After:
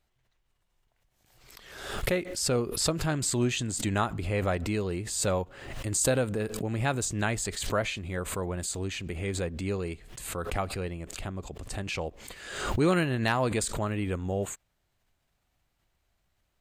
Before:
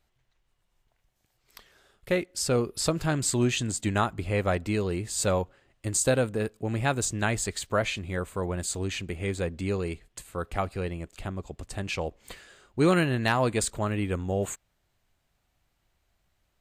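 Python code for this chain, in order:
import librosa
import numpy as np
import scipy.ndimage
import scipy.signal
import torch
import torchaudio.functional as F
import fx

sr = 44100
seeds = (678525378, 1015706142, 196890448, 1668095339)

y = fx.pre_swell(x, sr, db_per_s=57.0)
y = y * librosa.db_to_amplitude(-2.5)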